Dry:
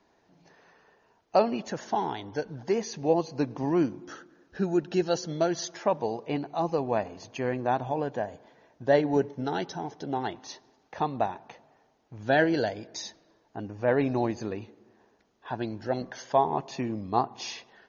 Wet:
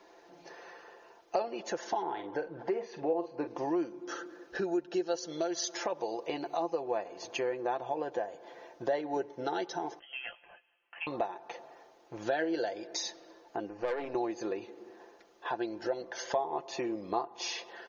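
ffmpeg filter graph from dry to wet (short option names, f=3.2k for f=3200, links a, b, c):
-filter_complex "[0:a]asettb=1/sr,asplit=3[a][b][c];[a]atrim=end=2.024[d];[b]atrim=start=2.02:end=3.47,asetpts=PTS-STARTPTS,afade=t=in:d=0.004:c=qsin,afade=t=out:st=1.446:d=0.004:c=qsin,lowpass=2.2k,asplit=2[e][f];[f]adelay=47,volume=-11dB[g];[e][g]amix=inputs=2:normalize=0,atrim=end_sample=63945[h];[c]atrim=start=3.466[i];[d][h]acrossfade=d=0.004:c1=hsin:c2=qsin[j];[j][i]acrossfade=d=0.004:c1=qsin:c2=hsin,asettb=1/sr,asplit=3[k][l][m];[k]atrim=end=5.184[n];[l]atrim=start=5.18:end=6.58,asetpts=PTS-STARTPTS,afade=t=in:d=0.004:c=qsin,afade=t=out:st=1.396:d=0.004:c=qsin,highshelf=f=3.5k:g=8,acompressor=threshold=-30dB:ratio=1.5:attack=3.2:release=140:knee=1:detection=peak[o];[m]atrim=start=6.576[p];[n][o]acrossfade=d=0.004:c1=hsin:c2=qsin[q];[q][p]acrossfade=d=0.004:c1=qsin:c2=hsin,asettb=1/sr,asplit=3[r][s][t];[r]atrim=end=9.994[u];[s]atrim=start=9.99:end=11.07,asetpts=PTS-STARTPTS,afade=t=in:d=0.004:c=qsin,afade=t=out:st=1.076:d=0.004:c=qsin,aderivative,lowpass=f=3k:t=q:w=0.5098,lowpass=f=3k:t=q:w=0.6013,lowpass=f=3k:t=q:w=0.9,lowpass=f=3k:t=q:w=2.563,afreqshift=-3500,asplit=2[v][w];[w]adelay=17,volume=-8.5dB[x];[v][x]amix=inputs=2:normalize=0,atrim=end_sample=47628[y];[t]atrim=start=11.066[z];[u][y]acrossfade=d=0.004:c1=hsin:c2=qsin[aa];[aa][z]acrossfade=d=0.004:c1=qsin:c2=hsin,asettb=1/sr,asplit=3[ab][ac][ad];[ab]atrim=end=13.694[ae];[ac]atrim=start=13.69:end=14.15,asetpts=PTS-STARTPTS,afade=t=in:d=0.004:c=qsin,afade=t=out:st=0.456:d=0.004:c=qsin,bandreject=f=3.5k:w=6.2,adynamicsmooth=sensitivity=2.5:basefreq=5.7k,aeval=exprs='(tanh(14.1*val(0)+0.75)-tanh(0.75))/14.1':c=same[af];[ad]atrim=start=14.146[ag];[ae][af]acrossfade=d=0.004:c1=hsin:c2=qsin[ah];[ah][ag]acrossfade=d=0.004:c1=qsin:c2=hsin,lowshelf=f=260:t=q:w=1.5:g=-12.5,aecho=1:1:5.8:0.52,acompressor=threshold=-42dB:ratio=3,volume=7dB"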